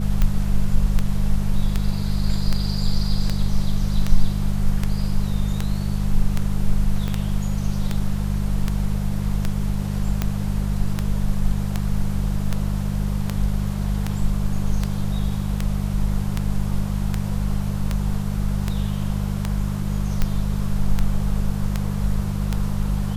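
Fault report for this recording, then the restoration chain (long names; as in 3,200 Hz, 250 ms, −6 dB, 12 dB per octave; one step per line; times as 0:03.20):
mains hum 50 Hz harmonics 4 −24 dBFS
scratch tick 78 rpm −8 dBFS
0:07.08: click −14 dBFS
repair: click removal
hum removal 50 Hz, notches 4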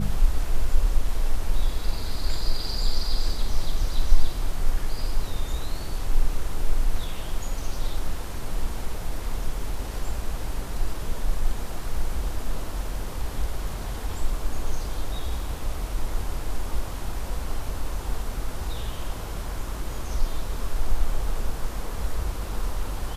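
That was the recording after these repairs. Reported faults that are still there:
0:07.08: click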